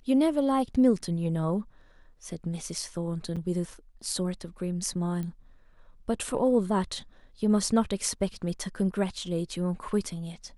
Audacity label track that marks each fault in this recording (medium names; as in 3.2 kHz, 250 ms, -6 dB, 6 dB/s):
3.360000	3.370000	dropout 6.3 ms
5.230000	5.230000	pop -24 dBFS